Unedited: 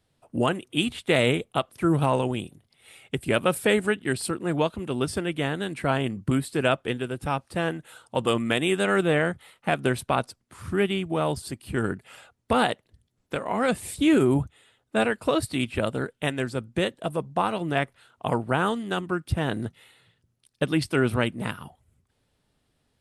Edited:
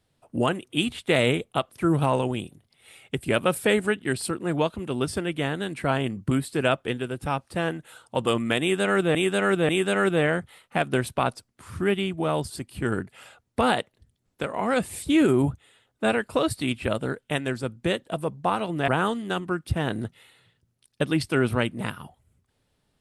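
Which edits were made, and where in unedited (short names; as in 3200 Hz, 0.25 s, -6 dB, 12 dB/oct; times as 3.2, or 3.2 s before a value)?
8.61–9.15 loop, 3 plays
17.8–18.49 cut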